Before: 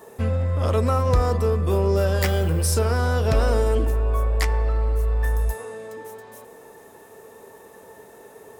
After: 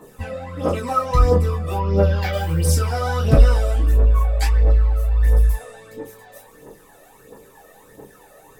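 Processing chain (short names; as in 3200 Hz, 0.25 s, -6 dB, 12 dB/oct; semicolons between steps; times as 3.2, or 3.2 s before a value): phaser 1.5 Hz, delay 1.7 ms, feedback 76%; 1.75–2.33 running mean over 5 samples; reverb, pre-delay 4 ms, DRR -6 dB; gain -9 dB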